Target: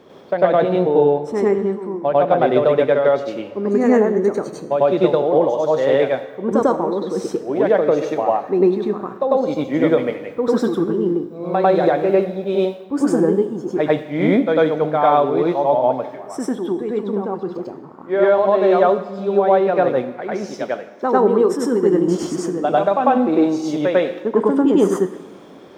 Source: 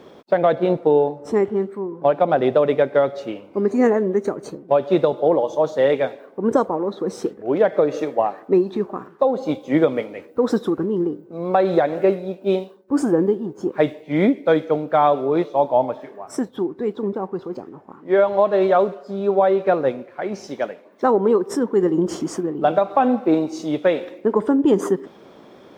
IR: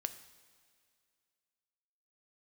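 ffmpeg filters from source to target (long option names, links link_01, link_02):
-filter_complex "[0:a]asplit=2[link_01][link_02];[link_02]equalizer=frequency=97:width_type=o:width=2:gain=7.5[link_03];[1:a]atrim=start_sample=2205,lowshelf=frequency=150:gain=-10.5,adelay=98[link_04];[link_03][link_04]afir=irnorm=-1:irlink=0,volume=5dB[link_05];[link_01][link_05]amix=inputs=2:normalize=0,volume=-3dB"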